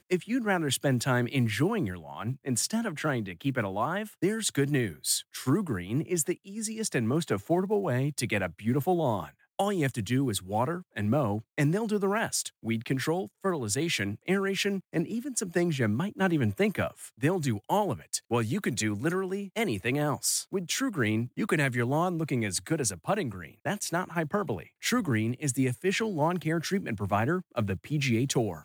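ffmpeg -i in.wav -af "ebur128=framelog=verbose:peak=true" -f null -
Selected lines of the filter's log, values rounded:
Integrated loudness:
  I:         -29.2 LUFS
  Threshold: -39.2 LUFS
Loudness range:
  LRA:         1.3 LU
  Threshold: -49.3 LUFS
  LRA low:   -30.0 LUFS
  LRA high:  -28.8 LUFS
True peak:
  Peak:      -13.4 dBFS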